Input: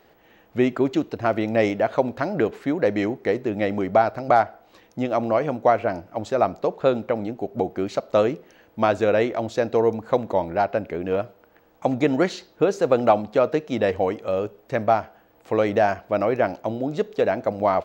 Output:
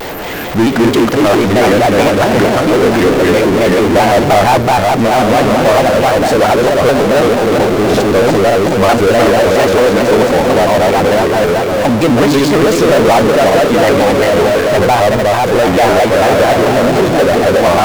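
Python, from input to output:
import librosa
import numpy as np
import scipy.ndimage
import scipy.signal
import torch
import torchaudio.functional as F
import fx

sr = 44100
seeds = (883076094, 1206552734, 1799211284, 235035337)

y = fx.reverse_delay_fb(x, sr, ms=185, feedback_pct=68, wet_db=-1.0)
y = fx.power_curve(y, sr, exponent=0.35)
y = fx.vibrato_shape(y, sr, shape='square', rate_hz=4.5, depth_cents=160.0)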